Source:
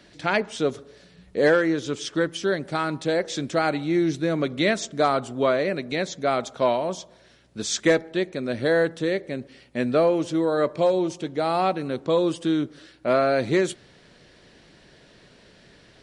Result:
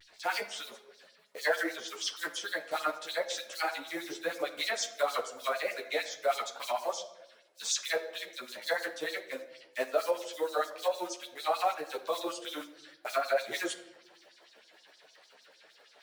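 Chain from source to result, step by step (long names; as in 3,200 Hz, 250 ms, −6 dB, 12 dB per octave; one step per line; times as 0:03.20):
one scale factor per block 5 bits
auto-filter high-pass sine 6.5 Hz 550–5,700 Hz
brickwall limiter −14 dBFS, peak gain reduction 8.5 dB
reverb reduction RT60 0.52 s
pitch vibrato 0.94 Hz 52 cents
rectangular room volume 420 cubic metres, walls mixed, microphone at 0.44 metres
string-ensemble chorus
level −2.5 dB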